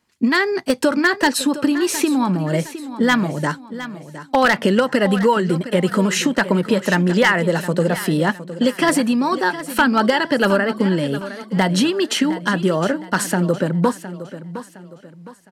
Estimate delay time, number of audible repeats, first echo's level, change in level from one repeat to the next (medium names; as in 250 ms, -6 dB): 712 ms, 3, -13.5 dB, -8.5 dB